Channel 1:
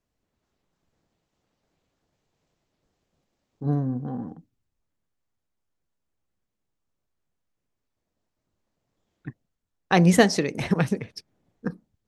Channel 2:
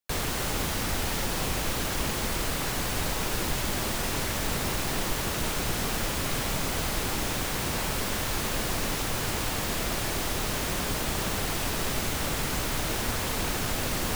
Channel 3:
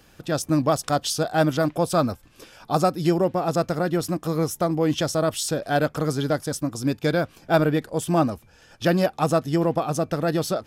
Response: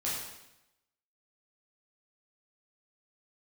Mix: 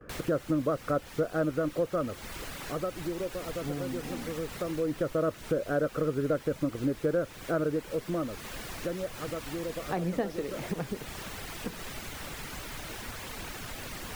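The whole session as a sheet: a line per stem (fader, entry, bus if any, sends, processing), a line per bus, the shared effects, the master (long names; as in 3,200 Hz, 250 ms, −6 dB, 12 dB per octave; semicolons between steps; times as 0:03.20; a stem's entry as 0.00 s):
−2.5 dB, 0.00 s, no send, resonant band-pass 470 Hz, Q 0.6
−10.0 dB, 0.00 s, no send, reverb reduction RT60 0.63 s; parametric band 2,000 Hz +4 dB 1.6 octaves
0.0 dB, 0.00 s, no send, noise gate with hold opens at −45 dBFS; drawn EQ curve 200 Hz 0 dB, 540 Hz +9 dB, 820 Hz −12 dB, 1,300 Hz +5 dB, 3,900 Hz −29 dB; speech leveller; automatic ducking −15 dB, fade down 1.85 s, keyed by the first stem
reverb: not used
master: downward compressor 2 to 1, threshold −34 dBFS, peak gain reduction 12 dB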